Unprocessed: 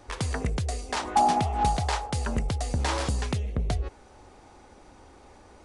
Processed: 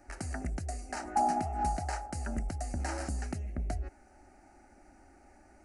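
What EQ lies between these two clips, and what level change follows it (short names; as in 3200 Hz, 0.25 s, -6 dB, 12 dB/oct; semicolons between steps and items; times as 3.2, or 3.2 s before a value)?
bell 150 Hz +12.5 dB 0.25 oct; fixed phaser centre 700 Hz, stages 8; dynamic EQ 2300 Hz, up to -5 dB, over -50 dBFS, Q 1.7; -4.5 dB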